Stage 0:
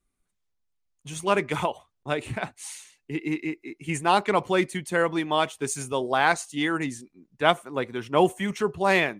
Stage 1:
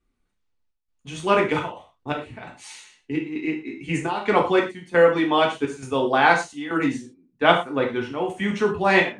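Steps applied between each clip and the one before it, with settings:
Bessel low-pass filter 4,100 Hz, order 2
gate pattern "xxxx.xxxx.xx.." 85 BPM −12 dB
reverb whose tail is shaped and stops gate 140 ms falling, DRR −0.5 dB
level +2 dB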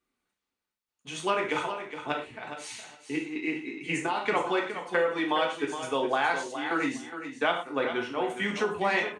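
high-pass filter 490 Hz 6 dB per octave
downward compressor 4 to 1, threshold −24 dBFS, peak gain reduction 11 dB
repeating echo 415 ms, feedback 16%, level −10 dB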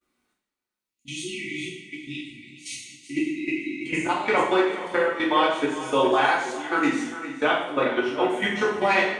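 time-frequency box erased 0:00.89–0:03.86, 380–1,900 Hz
output level in coarse steps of 14 dB
coupled-rooms reverb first 0.61 s, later 2.1 s, DRR −5 dB
level +3 dB

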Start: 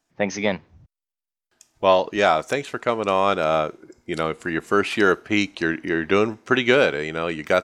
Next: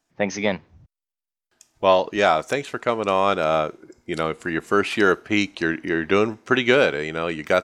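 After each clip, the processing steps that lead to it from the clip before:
no processing that can be heard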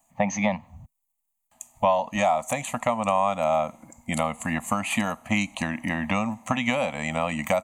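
drawn EQ curve 160 Hz 0 dB, 230 Hz +8 dB, 370 Hz −12 dB, 550 Hz +3 dB, 780 Hz +6 dB, 1,800 Hz 0 dB, 3,700 Hz −6 dB, 6,400 Hz +14 dB, 11,000 Hz +9 dB
downward compressor 6 to 1, threshold −23 dBFS, peak gain reduction 15 dB
phaser with its sweep stopped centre 1,500 Hz, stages 6
level +6.5 dB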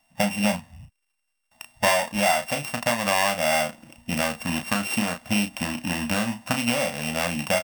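samples sorted by size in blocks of 16 samples
double-tracking delay 34 ms −7 dB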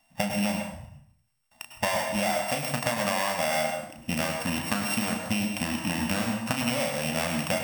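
downward compressor, threshold −24 dBFS, peak gain reduction 8.5 dB
dense smooth reverb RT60 0.62 s, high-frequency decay 0.7×, pre-delay 90 ms, DRR 4 dB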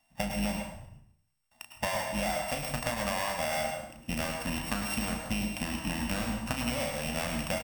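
sub-octave generator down 2 octaves, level −5 dB
single-tap delay 108 ms −14 dB
level −5 dB

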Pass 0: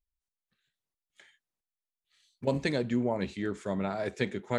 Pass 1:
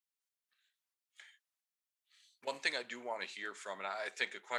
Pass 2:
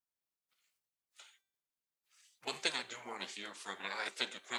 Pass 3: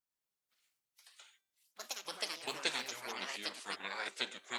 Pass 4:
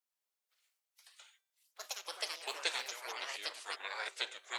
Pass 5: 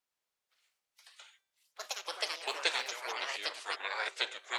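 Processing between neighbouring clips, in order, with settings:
high-pass filter 1,100 Hz 12 dB per octave; level +1 dB
gate on every frequency bin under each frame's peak −10 dB weak; hum removal 390.2 Hz, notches 27; level +6.5 dB
delay with pitch and tempo change per echo 118 ms, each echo +4 semitones, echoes 2; level −1 dB
high-pass filter 430 Hz 24 dB per octave
high-shelf EQ 8,100 Hz −10.5 dB; level +5.5 dB

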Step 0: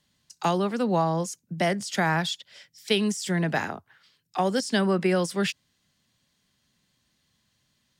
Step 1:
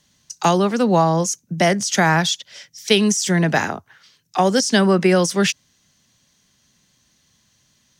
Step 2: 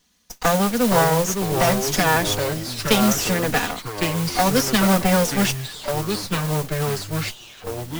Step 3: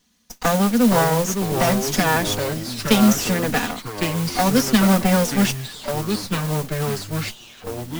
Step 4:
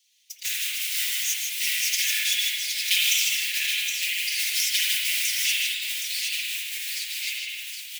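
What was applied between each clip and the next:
parametric band 6,100 Hz +11 dB 0.25 octaves; level +8 dB
lower of the sound and its delayed copy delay 4.1 ms; delay with pitch and tempo change per echo 352 ms, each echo −4 semitones, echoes 3, each echo −6 dB; noise that follows the level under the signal 11 dB; level −1.5 dB
parametric band 230 Hz +7.5 dB 0.45 octaves; level −1 dB
Butterworth high-pass 2,200 Hz 48 dB per octave; multi-tap delay 83/155/768 ms −16.5/−5.5/−6.5 dB; convolution reverb RT60 1.3 s, pre-delay 46 ms, DRR −4 dB

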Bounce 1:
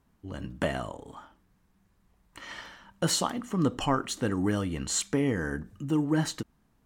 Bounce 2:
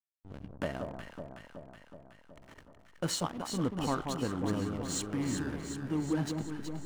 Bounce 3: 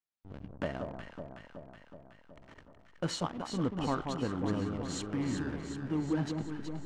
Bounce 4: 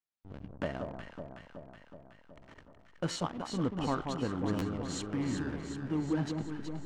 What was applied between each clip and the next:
slack as between gear wheels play −31.5 dBFS; healed spectral selection 0:04.71–0:05.50, 330–830 Hz; delay that swaps between a low-pass and a high-pass 186 ms, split 1,200 Hz, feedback 79%, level −4.5 dB; level −6 dB
high-frequency loss of the air 82 metres
buffer that repeats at 0:01.42/0:03.12/0:04.58, samples 512, times 2

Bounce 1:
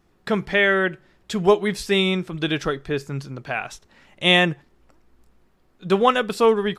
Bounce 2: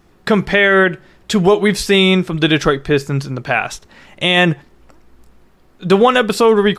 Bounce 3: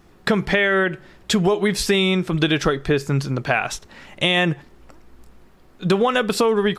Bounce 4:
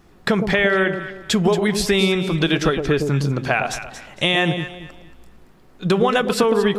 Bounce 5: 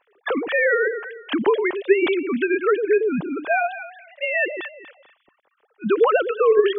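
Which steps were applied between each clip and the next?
boost into a limiter +11.5 dB; level −1 dB
downward compressor 5 to 1, threshold −15 dBFS, peak gain reduction 8.5 dB
delay that swaps between a low-pass and a high-pass 114 ms, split 840 Hz, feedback 52%, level −5.5 dB
three sine waves on the formant tracks; level −1.5 dB

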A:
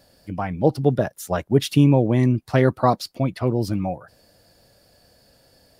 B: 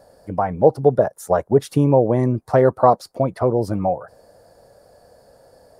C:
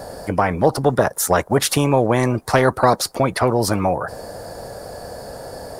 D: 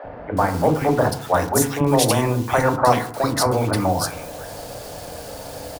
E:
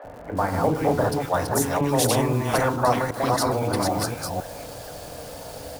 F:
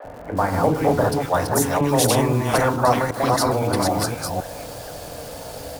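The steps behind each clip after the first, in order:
drawn EQ curve 310 Hz 0 dB, 460 Hz +10 dB, 940 Hz +8 dB, 1,700 Hz 0 dB, 2,800 Hz −12 dB, 4,100 Hz −8 dB, 6,700 Hz −3 dB, 9,500 Hz 0 dB, 14,000 Hz −7 dB; in parallel at +0.5 dB: downward compressor, threshold −19 dBFS, peak gain reduction 14 dB; on the sum: level −5 dB
every bin compressed towards the loudest bin 2 to 1
bit-depth reduction 6 bits, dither none; three-band delay without the direct sound mids, lows, highs 40/370 ms, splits 400/2,000 Hz; feedback delay network reverb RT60 0.62 s, low-frequency decay 1.25×, high-frequency decay 0.35×, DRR 6.5 dB; level −1 dB
delay that plays each chunk backwards 259 ms, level −3 dB; surface crackle 130 per second −34 dBFS; level −5 dB
pitch vibrato 0.7 Hz 13 cents; level +3 dB

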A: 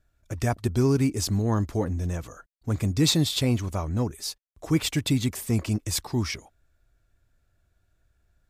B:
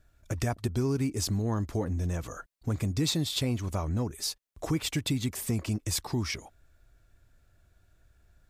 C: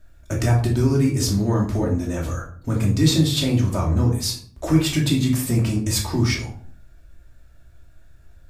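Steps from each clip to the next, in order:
downward compressor 2.5 to 1, threshold −36 dBFS, peak gain reduction 13 dB; level +5 dB
rectangular room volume 500 cubic metres, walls furnished, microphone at 2.7 metres; level +4.5 dB

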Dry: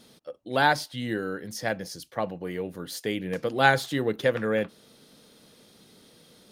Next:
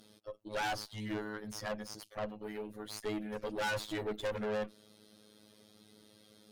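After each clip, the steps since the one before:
phases set to zero 106 Hz
tube saturation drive 33 dB, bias 0.65
level +1 dB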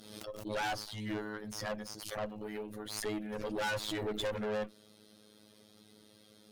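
surface crackle 71 per second −61 dBFS
background raised ahead of every attack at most 55 dB per second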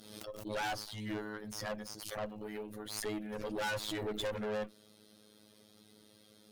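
high-shelf EQ 11,000 Hz +4 dB
level −1.5 dB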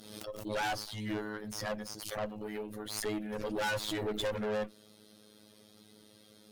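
level +3 dB
Ogg Vorbis 96 kbit/s 48,000 Hz

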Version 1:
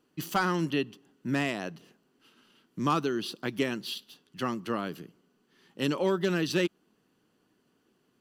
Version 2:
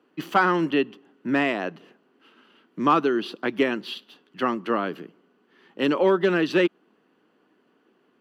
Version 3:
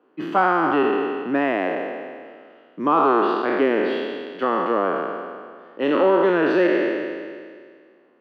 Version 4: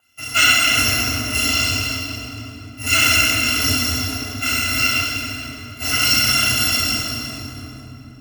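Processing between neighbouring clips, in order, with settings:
three-way crossover with the lows and the highs turned down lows −20 dB, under 210 Hz, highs −18 dB, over 3,100 Hz; level +8.5 dB
peak hold with a decay on every bin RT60 1.97 s; in parallel at +0.5 dB: brickwall limiter −12 dBFS, peak gain reduction 8 dB; on the sum: resonant band-pass 630 Hz, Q 0.68; level −3 dB
samples in bit-reversed order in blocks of 256 samples; hollow resonant body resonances 290/2,000 Hz, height 9 dB, ringing for 25 ms; convolution reverb RT60 3.5 s, pre-delay 3 ms, DRR −2 dB; level −4.5 dB

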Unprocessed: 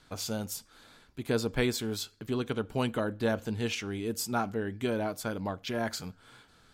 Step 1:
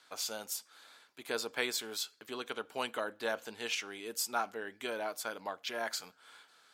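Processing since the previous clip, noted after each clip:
Bessel high-pass filter 760 Hz, order 2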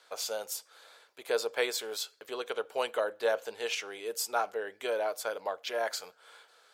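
graphic EQ with 10 bands 125 Hz −7 dB, 250 Hz −10 dB, 500 Hz +11 dB
level +1 dB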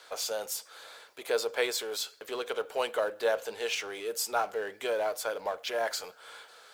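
mu-law and A-law mismatch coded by mu

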